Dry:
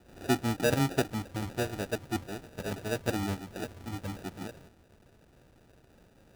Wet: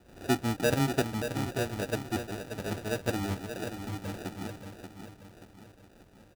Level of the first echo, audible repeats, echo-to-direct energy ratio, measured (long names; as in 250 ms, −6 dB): −8.0 dB, 4, −7.0 dB